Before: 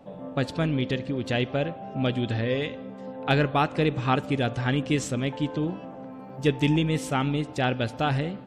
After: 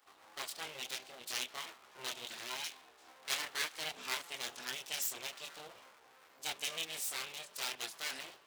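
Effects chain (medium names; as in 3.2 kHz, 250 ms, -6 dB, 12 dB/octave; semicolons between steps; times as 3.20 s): chorus voices 6, 0.4 Hz, delay 24 ms, depth 2 ms; full-wave rectifier; differentiator; trim +5 dB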